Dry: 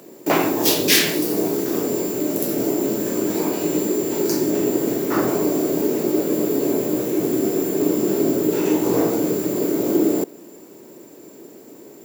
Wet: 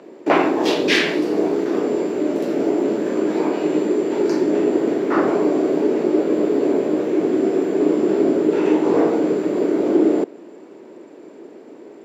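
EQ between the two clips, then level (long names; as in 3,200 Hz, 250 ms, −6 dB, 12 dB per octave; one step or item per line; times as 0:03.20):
band-pass filter 240–2,700 Hz
+3.5 dB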